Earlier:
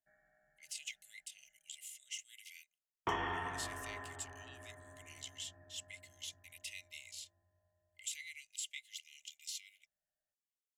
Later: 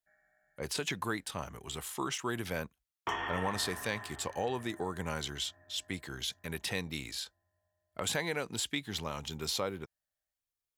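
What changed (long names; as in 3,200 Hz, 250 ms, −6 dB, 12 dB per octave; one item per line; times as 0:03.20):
speech: remove Chebyshev high-pass with heavy ripple 2,000 Hz, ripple 9 dB
master: add tilt shelving filter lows −4 dB, about 750 Hz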